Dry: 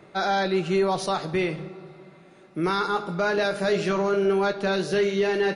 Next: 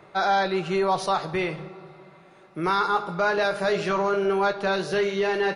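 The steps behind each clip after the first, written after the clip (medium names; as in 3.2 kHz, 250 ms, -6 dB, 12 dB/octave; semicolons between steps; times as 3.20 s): ten-band graphic EQ 250 Hz -6 dB, 1 kHz +5 dB, 8 kHz -3 dB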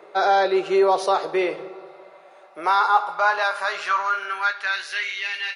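high-pass sweep 430 Hz -> 2.4 kHz, 1.64–5.38 s; trim +1 dB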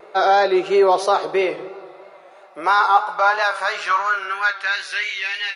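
vibrato 3 Hz 58 cents; trim +3 dB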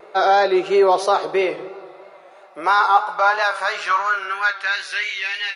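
no audible change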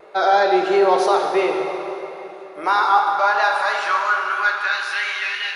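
plate-style reverb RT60 3.5 s, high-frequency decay 0.75×, DRR 2 dB; trim -2 dB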